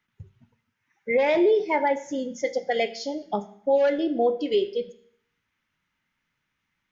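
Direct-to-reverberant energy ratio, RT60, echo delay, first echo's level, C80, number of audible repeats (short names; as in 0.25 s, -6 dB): 11.5 dB, 0.65 s, none, none, 18.0 dB, none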